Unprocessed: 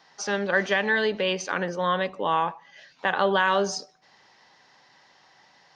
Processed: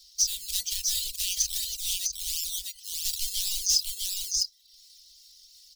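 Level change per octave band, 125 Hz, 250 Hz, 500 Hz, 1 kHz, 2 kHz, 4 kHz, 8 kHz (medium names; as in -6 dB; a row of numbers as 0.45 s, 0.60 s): under -15 dB, under -40 dB, under -40 dB, under -40 dB, -22.5 dB, +5.0 dB, +14.5 dB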